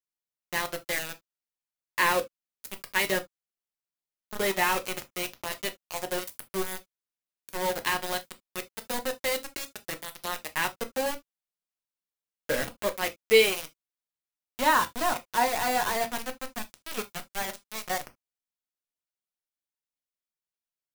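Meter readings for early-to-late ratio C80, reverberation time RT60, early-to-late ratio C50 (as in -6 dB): 40.5 dB, no single decay rate, 20.5 dB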